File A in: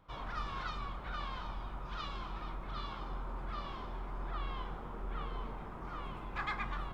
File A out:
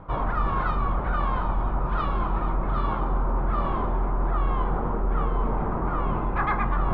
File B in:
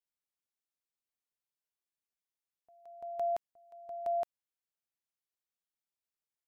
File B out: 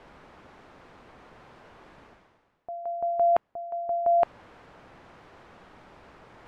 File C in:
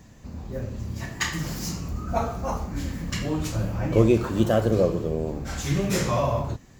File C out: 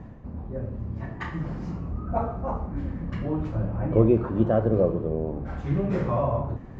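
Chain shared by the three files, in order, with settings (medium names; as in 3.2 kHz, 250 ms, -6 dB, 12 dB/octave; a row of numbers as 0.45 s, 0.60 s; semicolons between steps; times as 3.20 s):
low-pass 1.2 kHz 12 dB/octave; reverse; upward compressor, threshold -29 dBFS; reverse; normalise loudness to -27 LUFS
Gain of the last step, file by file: +12.5 dB, +10.5 dB, -0.5 dB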